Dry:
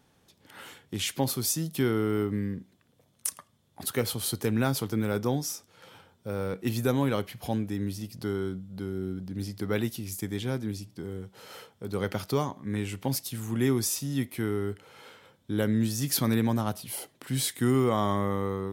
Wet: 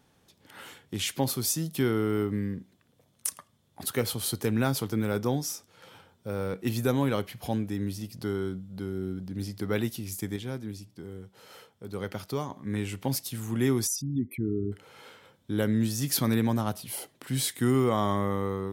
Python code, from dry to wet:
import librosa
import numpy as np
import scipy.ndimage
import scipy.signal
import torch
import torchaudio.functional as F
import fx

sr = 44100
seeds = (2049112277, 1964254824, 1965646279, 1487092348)

y = fx.envelope_sharpen(x, sr, power=3.0, at=(13.86, 14.71), fade=0.02)
y = fx.edit(y, sr, fx.clip_gain(start_s=10.36, length_s=2.14, db=-4.5), tone=tone)